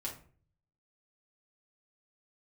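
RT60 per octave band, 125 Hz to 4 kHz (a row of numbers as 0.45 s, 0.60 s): 0.90 s, 0.55 s, 0.50 s, 0.40 s, 0.35 s, 0.30 s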